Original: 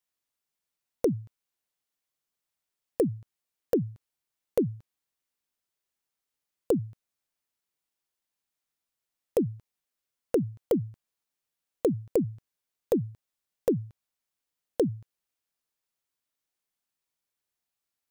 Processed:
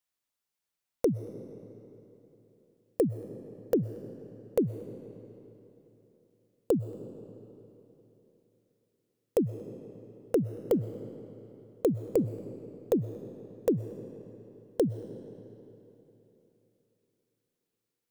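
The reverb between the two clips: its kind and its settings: digital reverb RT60 3.4 s, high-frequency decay 0.8×, pre-delay 85 ms, DRR 12 dB; gain -1 dB

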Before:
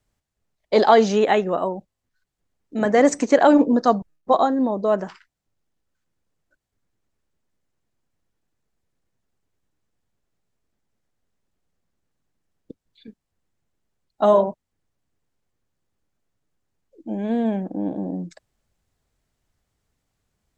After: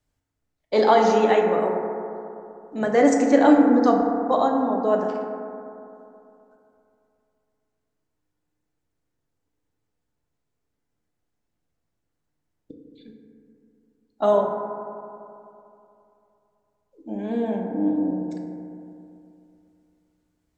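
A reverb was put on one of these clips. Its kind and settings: FDN reverb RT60 2.8 s, high-frequency decay 0.25×, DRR 0.5 dB; gain -4.5 dB

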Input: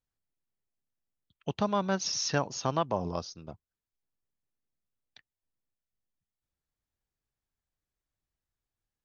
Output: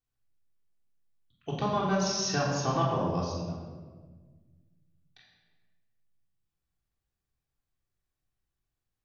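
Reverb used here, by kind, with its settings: shoebox room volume 1300 m³, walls mixed, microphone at 3.5 m; gain -5 dB

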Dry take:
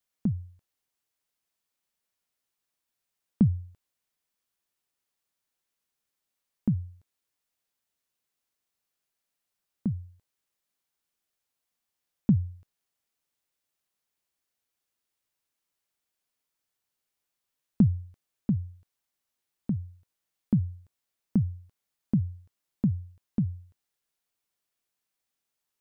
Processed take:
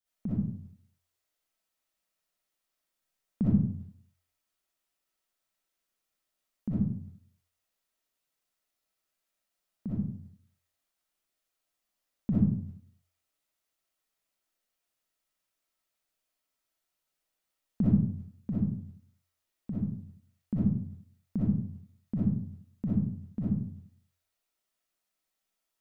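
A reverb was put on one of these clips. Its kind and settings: digital reverb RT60 0.6 s, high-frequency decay 0.55×, pre-delay 20 ms, DRR -9.5 dB; gain -8.5 dB

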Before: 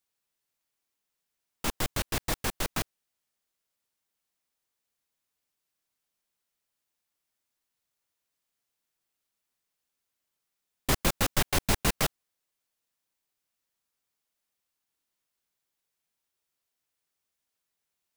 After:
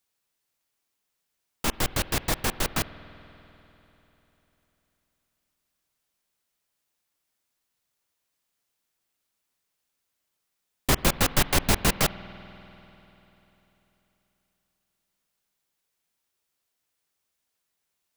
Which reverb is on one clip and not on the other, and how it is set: spring tank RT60 3.6 s, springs 49 ms, chirp 50 ms, DRR 15 dB; gain +4 dB

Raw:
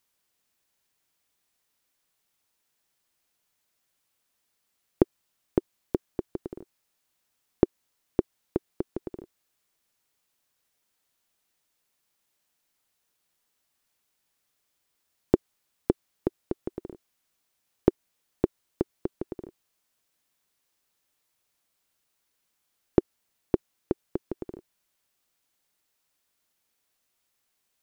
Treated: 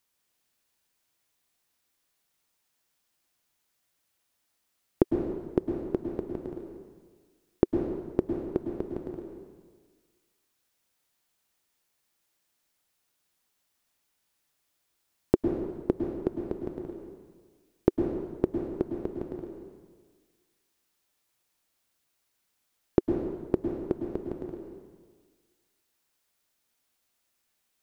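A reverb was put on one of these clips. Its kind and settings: plate-style reverb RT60 1.5 s, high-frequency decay 0.85×, pre-delay 95 ms, DRR 3 dB; gain -1.5 dB

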